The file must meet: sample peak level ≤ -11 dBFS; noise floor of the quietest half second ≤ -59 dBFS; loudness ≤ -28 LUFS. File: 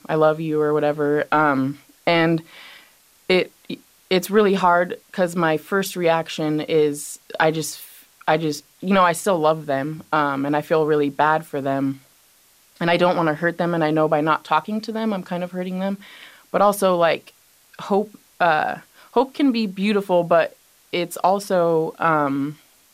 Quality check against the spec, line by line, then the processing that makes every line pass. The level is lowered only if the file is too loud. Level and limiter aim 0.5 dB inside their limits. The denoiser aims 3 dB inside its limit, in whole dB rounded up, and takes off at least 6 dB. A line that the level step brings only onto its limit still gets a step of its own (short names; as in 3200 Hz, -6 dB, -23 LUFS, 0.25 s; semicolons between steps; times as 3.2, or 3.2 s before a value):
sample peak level -5.0 dBFS: fail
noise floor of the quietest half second -56 dBFS: fail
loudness -20.5 LUFS: fail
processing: gain -8 dB